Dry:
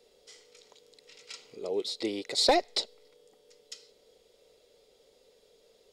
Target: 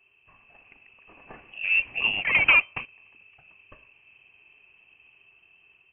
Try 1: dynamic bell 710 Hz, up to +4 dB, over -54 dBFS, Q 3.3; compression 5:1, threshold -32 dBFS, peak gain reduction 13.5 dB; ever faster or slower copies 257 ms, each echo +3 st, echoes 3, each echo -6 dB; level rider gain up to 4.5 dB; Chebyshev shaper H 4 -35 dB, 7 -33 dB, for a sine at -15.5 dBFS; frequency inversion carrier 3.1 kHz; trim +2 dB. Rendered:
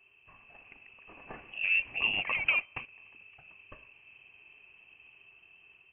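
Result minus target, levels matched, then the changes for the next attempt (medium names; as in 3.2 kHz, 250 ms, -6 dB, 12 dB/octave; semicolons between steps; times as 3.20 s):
compression: peak gain reduction +13.5 dB
remove: compression 5:1, threshold -32 dBFS, peak gain reduction 13.5 dB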